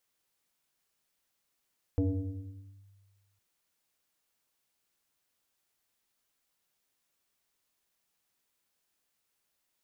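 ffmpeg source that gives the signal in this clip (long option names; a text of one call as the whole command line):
ffmpeg -f lavfi -i "aevalsrc='0.0708*pow(10,-3*t/1.63)*sin(2*PI*98.9*t+1.6*clip(1-t/0.89,0,1)*sin(2*PI*1.9*98.9*t))':duration=1.41:sample_rate=44100" out.wav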